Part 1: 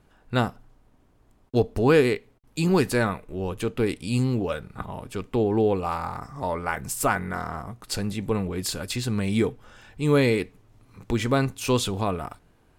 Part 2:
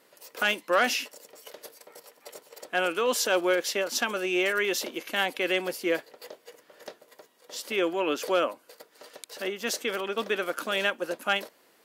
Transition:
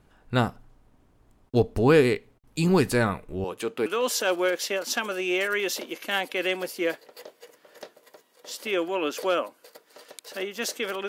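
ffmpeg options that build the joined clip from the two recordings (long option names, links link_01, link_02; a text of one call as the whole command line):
ffmpeg -i cue0.wav -i cue1.wav -filter_complex "[0:a]asettb=1/sr,asplit=3[link_01][link_02][link_03];[link_01]atrim=end=3.444[link_04];[link_02]atrim=start=3.44:end=3.86,asetpts=PTS-STARTPTS,afade=type=in:duration=0.004:curve=qsin,afade=type=out:start_time=0.416:duration=0.004:curve=qsin,highpass=330[link_05];[link_03]atrim=start=3.856[link_06];[link_04][link_05]acrossfade=duration=0.004:curve1=hsin:curve2=qsin[link_07];[link_07][link_06]acrossfade=duration=0.004:curve1=qsin:curve2=hsin,apad=whole_dur=11.08,atrim=end=11.08,atrim=end=3.862[link_08];[1:a]atrim=start=2.908:end=10.13[link_09];[link_08][link_09]acrossfade=duration=0.004:curve1=hsin:curve2=hsin" out.wav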